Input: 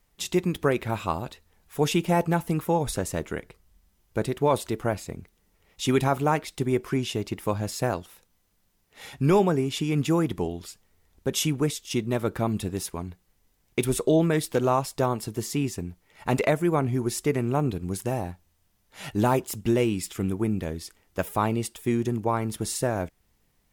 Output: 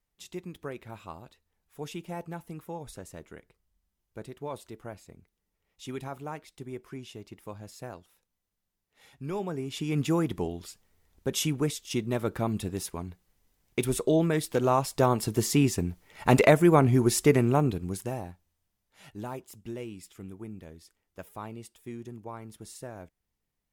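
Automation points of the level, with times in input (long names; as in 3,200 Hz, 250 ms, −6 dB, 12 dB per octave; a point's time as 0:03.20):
0:09.27 −15 dB
0:09.96 −3 dB
0:14.49 −3 dB
0:15.35 +4 dB
0:17.34 +4 dB
0:18.25 −7.5 dB
0:19.22 −15.5 dB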